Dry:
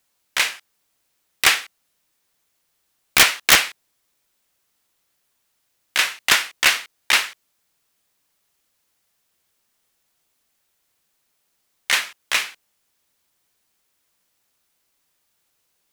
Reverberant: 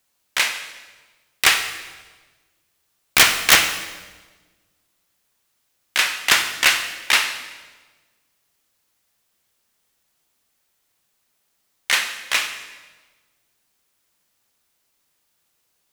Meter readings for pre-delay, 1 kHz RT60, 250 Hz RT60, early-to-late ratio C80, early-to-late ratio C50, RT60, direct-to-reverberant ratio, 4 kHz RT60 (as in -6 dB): 29 ms, 1.3 s, 1.6 s, 10.5 dB, 9.0 dB, 1.4 s, 7.5 dB, 1.2 s